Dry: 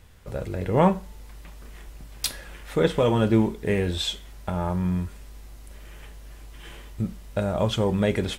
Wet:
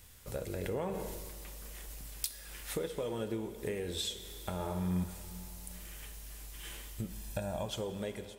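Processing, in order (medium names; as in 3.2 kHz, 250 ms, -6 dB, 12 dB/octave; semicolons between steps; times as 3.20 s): fade out at the end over 0.83 s; pre-emphasis filter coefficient 0.8; 7.10–7.66 s: comb 1.2 ms, depth 70%; dynamic bell 440 Hz, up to +8 dB, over -50 dBFS, Q 1.1; compression 10:1, threshold -40 dBFS, peak gain reduction 18 dB; 4.54–5.04 s: flutter echo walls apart 9.5 m, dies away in 0.77 s; reverberation RT60 3.2 s, pre-delay 56 ms, DRR 10.5 dB; 0.58–2.26 s: decay stretcher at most 23 dB/s; trim +6 dB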